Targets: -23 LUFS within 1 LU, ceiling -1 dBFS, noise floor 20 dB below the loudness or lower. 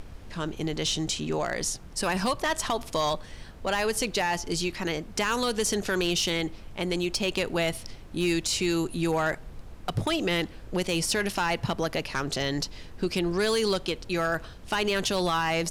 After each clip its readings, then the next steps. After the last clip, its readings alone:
clipped 0.6%; flat tops at -19.0 dBFS; noise floor -45 dBFS; noise floor target -48 dBFS; loudness -28.0 LUFS; peak -19.0 dBFS; loudness target -23.0 LUFS
-> clip repair -19 dBFS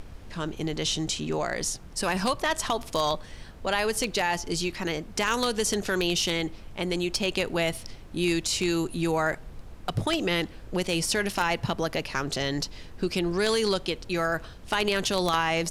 clipped 0.0%; noise floor -45 dBFS; noise floor target -48 dBFS
-> noise print and reduce 6 dB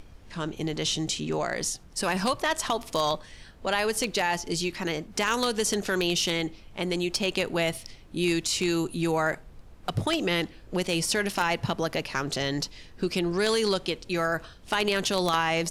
noise floor -50 dBFS; loudness -27.5 LUFS; peak -10.0 dBFS; loudness target -23.0 LUFS
-> gain +4.5 dB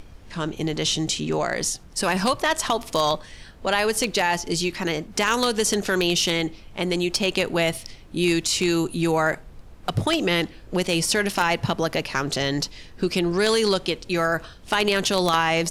loudness -23.0 LUFS; peak -5.5 dBFS; noise floor -45 dBFS

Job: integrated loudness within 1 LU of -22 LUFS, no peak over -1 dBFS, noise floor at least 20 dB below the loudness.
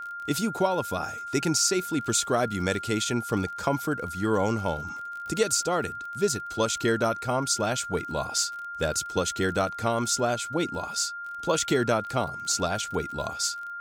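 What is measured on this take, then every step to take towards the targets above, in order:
ticks 34/s; steady tone 1400 Hz; tone level -34 dBFS; loudness -27.0 LUFS; peak -10.0 dBFS; loudness target -22.0 LUFS
-> de-click; notch 1400 Hz, Q 30; gain +5 dB

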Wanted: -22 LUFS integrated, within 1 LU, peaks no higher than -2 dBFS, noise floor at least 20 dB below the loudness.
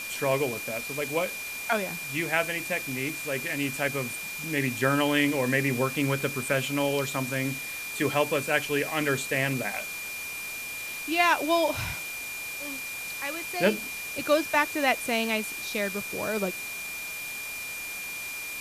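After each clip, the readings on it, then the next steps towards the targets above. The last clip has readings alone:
steady tone 2400 Hz; tone level -35 dBFS; noise floor -36 dBFS; noise floor target -48 dBFS; loudness -28.0 LUFS; peak -9.0 dBFS; loudness target -22.0 LUFS
-> notch 2400 Hz, Q 30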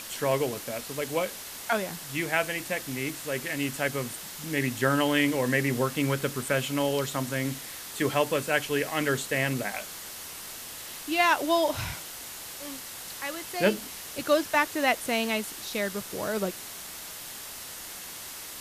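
steady tone none; noise floor -41 dBFS; noise floor target -49 dBFS
-> denoiser 8 dB, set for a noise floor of -41 dBFS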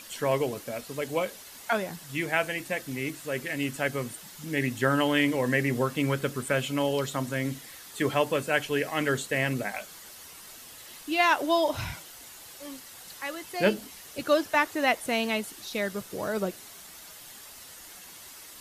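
noise floor -47 dBFS; noise floor target -49 dBFS
-> denoiser 6 dB, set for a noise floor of -47 dBFS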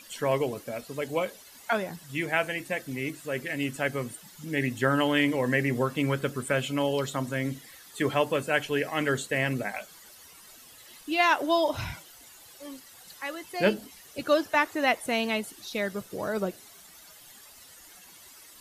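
noise floor -51 dBFS; loudness -28.5 LUFS; peak -10.0 dBFS; loudness target -22.0 LUFS
-> gain +6.5 dB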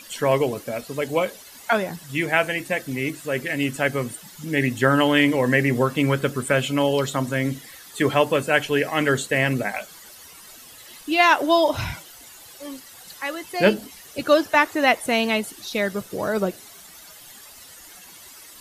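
loudness -22.0 LUFS; peak -3.5 dBFS; noise floor -45 dBFS

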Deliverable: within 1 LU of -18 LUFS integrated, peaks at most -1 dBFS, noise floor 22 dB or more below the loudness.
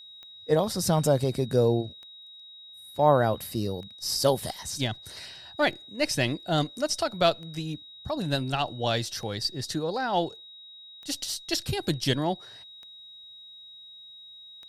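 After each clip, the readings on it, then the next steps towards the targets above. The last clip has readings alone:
clicks 9; steady tone 3800 Hz; tone level -45 dBFS; loudness -27.5 LUFS; peak -8.5 dBFS; loudness target -18.0 LUFS
-> de-click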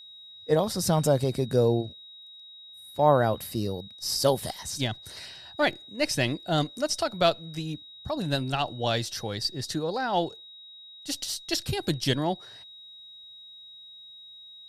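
clicks 0; steady tone 3800 Hz; tone level -45 dBFS
-> notch 3800 Hz, Q 30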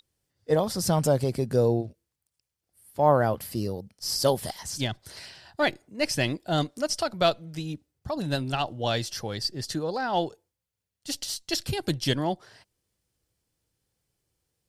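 steady tone none; loudness -27.5 LUFS; peak -8.5 dBFS; loudness target -18.0 LUFS
-> gain +9.5 dB; limiter -1 dBFS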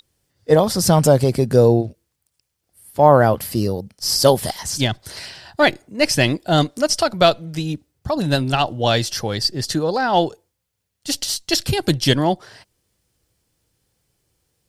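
loudness -18.0 LUFS; peak -1.0 dBFS; noise floor -76 dBFS

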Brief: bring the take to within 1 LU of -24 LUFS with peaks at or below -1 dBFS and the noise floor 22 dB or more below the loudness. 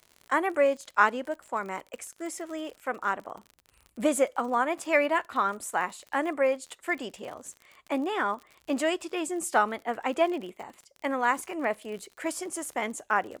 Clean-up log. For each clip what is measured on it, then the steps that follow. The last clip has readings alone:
ticks 51/s; loudness -29.0 LUFS; peak -7.0 dBFS; loudness target -24.0 LUFS
-> de-click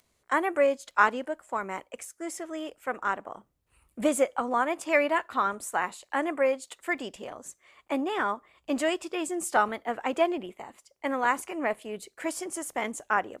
ticks 0.22/s; loudness -29.0 LUFS; peak -7.0 dBFS; loudness target -24.0 LUFS
-> gain +5 dB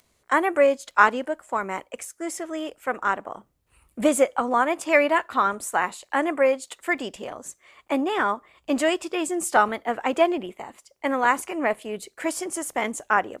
loudness -24.0 LUFS; peak -2.0 dBFS; noise floor -68 dBFS

